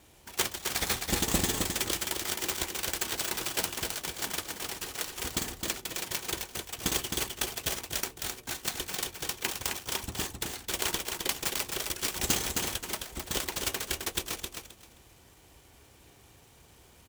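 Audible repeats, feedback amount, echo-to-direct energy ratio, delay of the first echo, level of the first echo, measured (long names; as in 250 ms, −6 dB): 3, 20%, −5.0 dB, 263 ms, −5.0 dB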